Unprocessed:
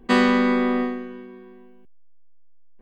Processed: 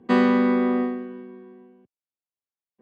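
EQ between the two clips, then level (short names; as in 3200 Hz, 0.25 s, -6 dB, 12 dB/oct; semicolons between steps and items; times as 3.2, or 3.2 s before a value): HPF 97 Hz 24 dB/oct; air absorption 53 m; tilt shelf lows +4.5 dB, about 1500 Hz; -4.0 dB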